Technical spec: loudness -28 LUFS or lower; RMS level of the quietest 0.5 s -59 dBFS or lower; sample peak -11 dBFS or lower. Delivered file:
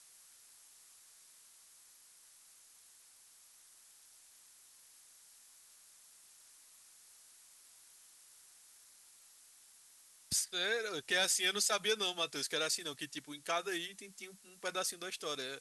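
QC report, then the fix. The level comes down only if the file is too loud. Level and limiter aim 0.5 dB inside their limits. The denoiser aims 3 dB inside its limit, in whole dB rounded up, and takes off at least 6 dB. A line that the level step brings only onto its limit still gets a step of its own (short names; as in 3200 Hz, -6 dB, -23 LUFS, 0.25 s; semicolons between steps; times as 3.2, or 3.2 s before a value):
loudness -35.0 LUFS: OK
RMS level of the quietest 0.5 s -62 dBFS: OK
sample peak -19.5 dBFS: OK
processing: none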